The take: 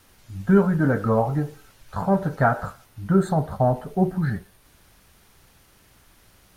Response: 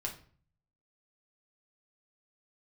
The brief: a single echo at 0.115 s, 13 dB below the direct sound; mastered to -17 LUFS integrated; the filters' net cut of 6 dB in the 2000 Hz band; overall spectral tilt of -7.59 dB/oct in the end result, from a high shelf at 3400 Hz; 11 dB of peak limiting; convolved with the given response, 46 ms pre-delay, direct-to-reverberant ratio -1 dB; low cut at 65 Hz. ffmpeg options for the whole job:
-filter_complex "[0:a]highpass=65,equalizer=f=2k:t=o:g=-8,highshelf=f=3.4k:g=-5,alimiter=limit=-18dB:level=0:latency=1,aecho=1:1:115:0.224,asplit=2[a][b];[1:a]atrim=start_sample=2205,adelay=46[c];[b][c]afir=irnorm=-1:irlink=0,volume=0dB[d];[a][d]amix=inputs=2:normalize=0,volume=7dB"

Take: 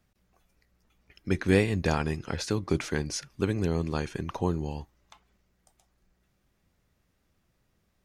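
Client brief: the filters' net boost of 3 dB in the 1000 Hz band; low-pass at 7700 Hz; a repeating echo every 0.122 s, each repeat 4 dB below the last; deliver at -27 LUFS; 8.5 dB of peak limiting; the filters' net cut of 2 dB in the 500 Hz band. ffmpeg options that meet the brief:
-af "lowpass=7.7k,equalizer=f=500:t=o:g=-3.5,equalizer=f=1k:t=o:g=5,alimiter=limit=-17dB:level=0:latency=1,aecho=1:1:122|244|366|488|610|732|854|976|1098:0.631|0.398|0.25|0.158|0.0994|0.0626|0.0394|0.0249|0.0157,volume=2.5dB"

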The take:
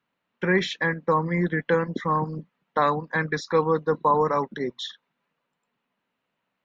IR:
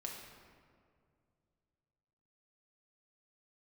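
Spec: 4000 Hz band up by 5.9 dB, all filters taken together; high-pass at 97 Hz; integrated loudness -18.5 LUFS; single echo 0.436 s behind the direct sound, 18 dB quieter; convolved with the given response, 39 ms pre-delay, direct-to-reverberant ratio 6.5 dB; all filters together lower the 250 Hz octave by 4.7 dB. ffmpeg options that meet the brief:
-filter_complex "[0:a]highpass=97,equalizer=f=250:t=o:g=-8,equalizer=f=4k:t=o:g=7,aecho=1:1:436:0.126,asplit=2[a][b];[1:a]atrim=start_sample=2205,adelay=39[c];[b][c]afir=irnorm=-1:irlink=0,volume=-5dB[d];[a][d]amix=inputs=2:normalize=0,volume=6dB"

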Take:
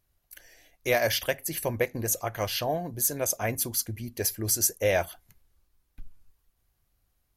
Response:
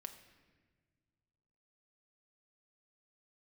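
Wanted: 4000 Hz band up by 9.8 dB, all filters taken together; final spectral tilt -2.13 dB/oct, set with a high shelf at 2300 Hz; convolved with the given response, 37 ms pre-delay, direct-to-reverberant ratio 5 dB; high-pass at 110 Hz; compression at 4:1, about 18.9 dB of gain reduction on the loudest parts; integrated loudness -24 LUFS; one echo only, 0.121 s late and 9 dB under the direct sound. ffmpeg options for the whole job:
-filter_complex "[0:a]highpass=110,highshelf=f=2.3k:g=5,equalizer=f=4k:t=o:g=8,acompressor=threshold=-37dB:ratio=4,aecho=1:1:121:0.355,asplit=2[a][b];[1:a]atrim=start_sample=2205,adelay=37[c];[b][c]afir=irnorm=-1:irlink=0,volume=-0.5dB[d];[a][d]amix=inputs=2:normalize=0,volume=12dB"

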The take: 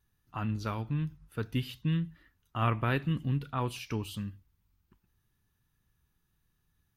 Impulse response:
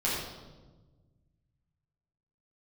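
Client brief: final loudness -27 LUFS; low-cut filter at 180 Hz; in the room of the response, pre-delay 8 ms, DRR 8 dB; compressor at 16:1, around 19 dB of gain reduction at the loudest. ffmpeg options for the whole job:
-filter_complex "[0:a]highpass=180,acompressor=threshold=-44dB:ratio=16,asplit=2[a][b];[1:a]atrim=start_sample=2205,adelay=8[c];[b][c]afir=irnorm=-1:irlink=0,volume=-17dB[d];[a][d]amix=inputs=2:normalize=0,volume=22.5dB"

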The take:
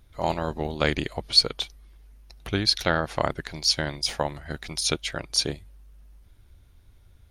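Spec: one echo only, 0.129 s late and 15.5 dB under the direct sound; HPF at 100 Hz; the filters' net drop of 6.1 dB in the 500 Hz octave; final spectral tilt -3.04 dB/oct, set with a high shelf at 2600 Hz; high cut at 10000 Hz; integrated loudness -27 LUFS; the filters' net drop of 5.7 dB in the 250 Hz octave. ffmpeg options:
-af "highpass=100,lowpass=10k,equalizer=f=250:t=o:g=-6,equalizer=f=500:t=o:g=-6,highshelf=f=2.6k:g=-6.5,aecho=1:1:129:0.168,volume=3dB"

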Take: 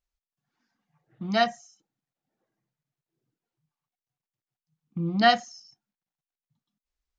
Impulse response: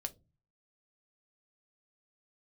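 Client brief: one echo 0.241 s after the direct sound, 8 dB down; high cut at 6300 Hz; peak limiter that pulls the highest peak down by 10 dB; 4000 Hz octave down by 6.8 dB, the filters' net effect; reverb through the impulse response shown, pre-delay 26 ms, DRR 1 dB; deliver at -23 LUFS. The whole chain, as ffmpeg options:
-filter_complex "[0:a]lowpass=6.3k,equalizer=f=4k:t=o:g=-9,alimiter=limit=-18.5dB:level=0:latency=1,aecho=1:1:241:0.398,asplit=2[a][b];[1:a]atrim=start_sample=2205,adelay=26[c];[b][c]afir=irnorm=-1:irlink=0,volume=0.5dB[d];[a][d]amix=inputs=2:normalize=0,volume=5dB"

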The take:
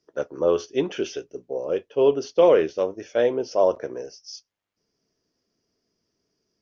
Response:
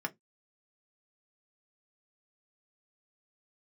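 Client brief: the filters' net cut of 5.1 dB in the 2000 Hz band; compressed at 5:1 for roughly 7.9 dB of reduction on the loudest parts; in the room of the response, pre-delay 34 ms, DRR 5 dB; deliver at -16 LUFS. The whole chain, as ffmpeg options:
-filter_complex "[0:a]equalizer=f=2k:t=o:g=-7,acompressor=threshold=-21dB:ratio=5,asplit=2[a][b];[1:a]atrim=start_sample=2205,adelay=34[c];[b][c]afir=irnorm=-1:irlink=0,volume=-8.5dB[d];[a][d]amix=inputs=2:normalize=0,volume=12dB"

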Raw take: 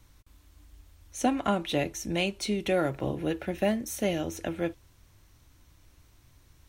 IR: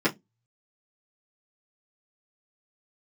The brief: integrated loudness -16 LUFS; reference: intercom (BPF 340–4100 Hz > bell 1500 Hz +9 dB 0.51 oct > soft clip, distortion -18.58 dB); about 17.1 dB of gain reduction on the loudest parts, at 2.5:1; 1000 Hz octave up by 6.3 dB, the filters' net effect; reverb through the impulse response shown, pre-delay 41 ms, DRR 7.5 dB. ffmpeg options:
-filter_complex "[0:a]equalizer=f=1k:t=o:g=6.5,acompressor=threshold=-46dB:ratio=2.5,asplit=2[a][b];[1:a]atrim=start_sample=2205,adelay=41[c];[b][c]afir=irnorm=-1:irlink=0,volume=-21dB[d];[a][d]amix=inputs=2:normalize=0,highpass=340,lowpass=4.1k,equalizer=f=1.5k:t=o:w=0.51:g=9,asoftclip=threshold=-31dB,volume=28dB"

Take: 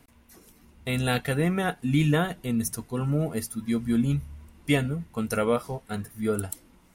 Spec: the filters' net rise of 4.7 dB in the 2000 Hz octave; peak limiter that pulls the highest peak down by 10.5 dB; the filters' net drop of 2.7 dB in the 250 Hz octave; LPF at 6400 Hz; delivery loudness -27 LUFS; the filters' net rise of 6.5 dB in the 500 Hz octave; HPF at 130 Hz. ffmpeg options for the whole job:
-af "highpass=130,lowpass=6.4k,equalizer=f=250:t=o:g=-5,equalizer=f=500:t=o:g=8.5,equalizer=f=2k:t=o:g=5.5,volume=2dB,alimiter=limit=-15dB:level=0:latency=1"

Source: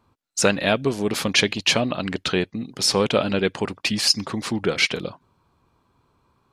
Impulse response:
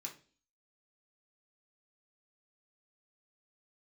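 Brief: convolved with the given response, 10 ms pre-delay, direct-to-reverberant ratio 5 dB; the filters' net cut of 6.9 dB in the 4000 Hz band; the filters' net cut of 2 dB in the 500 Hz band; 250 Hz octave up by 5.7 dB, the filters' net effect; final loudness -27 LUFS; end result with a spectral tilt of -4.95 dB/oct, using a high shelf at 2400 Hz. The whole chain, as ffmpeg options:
-filter_complex "[0:a]equalizer=f=250:t=o:g=8.5,equalizer=f=500:t=o:g=-5,highshelf=f=2.4k:g=-5,equalizer=f=4k:t=o:g=-4.5,asplit=2[a][b];[1:a]atrim=start_sample=2205,adelay=10[c];[b][c]afir=irnorm=-1:irlink=0,volume=-2dB[d];[a][d]amix=inputs=2:normalize=0,volume=-6dB"

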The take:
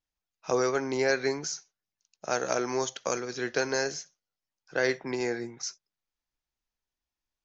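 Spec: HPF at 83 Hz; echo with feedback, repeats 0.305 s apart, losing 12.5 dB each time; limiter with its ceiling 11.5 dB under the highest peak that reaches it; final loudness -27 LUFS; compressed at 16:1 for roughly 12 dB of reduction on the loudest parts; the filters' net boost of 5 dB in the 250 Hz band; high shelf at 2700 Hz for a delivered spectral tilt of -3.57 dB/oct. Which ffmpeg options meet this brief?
-af "highpass=83,equalizer=f=250:t=o:g=6.5,highshelf=f=2.7k:g=-4,acompressor=threshold=-32dB:ratio=16,alimiter=level_in=5.5dB:limit=-24dB:level=0:latency=1,volume=-5.5dB,aecho=1:1:305|610|915:0.237|0.0569|0.0137,volume=13dB"

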